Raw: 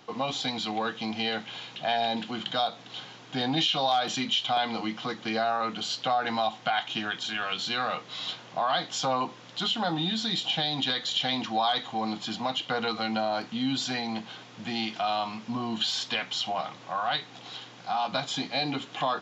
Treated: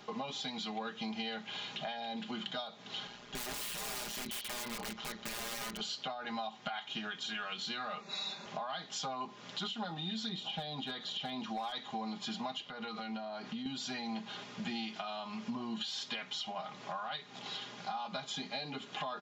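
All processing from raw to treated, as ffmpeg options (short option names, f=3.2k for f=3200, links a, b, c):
-filter_complex "[0:a]asettb=1/sr,asplit=3[a][b][c];[a]atrim=end=3.074[d];[b]atrim=start=3.07:end=5.8,asetpts=PTS-STARTPTS,afade=t=in:d=0.004:c=qsin,afade=t=out:st=2.726:d=0.004:c=qsin,bandreject=f=390:w=6.9,tremolo=f=120:d=0.974,aeval=exprs='(mod(28.2*val(0)+1,2)-1)/28.2':c=same[e];[c]atrim=start=5.796[f];[d][e]acrossfade=d=0.004:c1=hsin:c2=qsin[g];[g][f]acrossfade=d=0.004:c1=qsin:c2=hsin,asettb=1/sr,asplit=3[h][i][j];[h]atrim=end=8.004[k];[i]atrim=start=8:end=8.46,asetpts=PTS-STARTPTS,afade=t=in:d=0.004:c=qsin,afade=t=out:st=0.456:d=0.004:c=qsin,asuperstop=centerf=3100:order=12:qfactor=4.6,bandreject=f=60:t=h:w=6,bandreject=f=120:t=h:w=6,bandreject=f=180:t=h:w=6,bandreject=f=240:t=h:w=6,bandreject=f=300:t=h:w=6,bandreject=f=360:t=h:w=6,bandreject=f=420:t=h:w=6,bandreject=f=480:t=h:w=6,aecho=1:1:5.2:0.72,atrim=end_sample=20286[l];[j]atrim=start=8.456[m];[k][l]acrossfade=d=0.004:c1=hsin:c2=qsin[n];[n][m]acrossfade=d=0.004:c1=qsin:c2=hsin,asettb=1/sr,asplit=3[o][p][q];[o]atrim=end=10.294[r];[p]atrim=start=10.29:end=11.72,asetpts=PTS-STARTPTS,afade=t=in:d=0.004:c=qsin,afade=t=out:st=1.426:d=0.004:c=qsin,acrossover=split=3100[s][t];[t]acompressor=threshold=-43dB:ratio=4:attack=1:release=60[u];[s][u]amix=inputs=2:normalize=0,equalizer=f=2k:t=o:w=0.63:g=-6,asoftclip=type=hard:threshold=-22dB[v];[q]atrim=start=11.716[w];[r][v]acrossfade=d=0.004:c1=hsin:c2=qsin[x];[x][w]acrossfade=d=0.004:c1=qsin:c2=hsin,asettb=1/sr,asplit=3[y][z][aa];[y]atrim=end=12.624[ab];[z]atrim=start=12.62:end=13.66,asetpts=PTS-STARTPTS,afade=t=in:d=0.004:c=qsin,afade=t=out:st=1.036:d=0.004:c=qsin,lowpass=6.1k,acompressor=threshold=-39dB:ratio=5:attack=3.2:release=140:knee=1:detection=peak[ac];[aa]atrim=start=13.656[ad];[ab][ac]acrossfade=d=0.004:c1=hsin:c2=qsin[ae];[ae][ad]acrossfade=d=0.004:c1=qsin:c2=hsin,acompressor=threshold=-38dB:ratio=6,aecho=1:1:4.9:0.65,volume=-1dB"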